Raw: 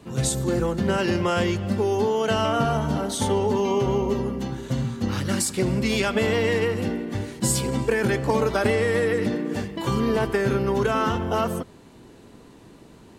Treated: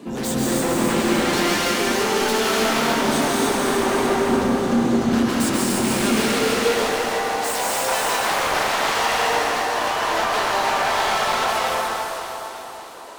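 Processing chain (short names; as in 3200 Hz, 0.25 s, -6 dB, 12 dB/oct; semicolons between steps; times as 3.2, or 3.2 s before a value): 1.33–2.4 tilt shelf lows -8.5 dB, about 670 Hz; 4.27–4.81 elliptic band-pass 110–7700 Hz; dynamic EQ 1500 Hz, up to +6 dB, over -40 dBFS, Q 0.91; in parallel at -2 dB: compressor, threshold -28 dBFS, peak gain reduction 13 dB; on the sum: wavefolder -19 dBFS; high-pass sweep 250 Hz -> 740 Hz, 6.06–6.85; hard clip -24.5 dBFS, distortion -8 dB; thin delay 0.298 s, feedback 60%, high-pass 4100 Hz, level -3.5 dB; plate-style reverb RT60 3.7 s, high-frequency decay 0.6×, pre-delay 0.12 s, DRR -5 dB; 8.26–8.95 Doppler distortion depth 0.59 ms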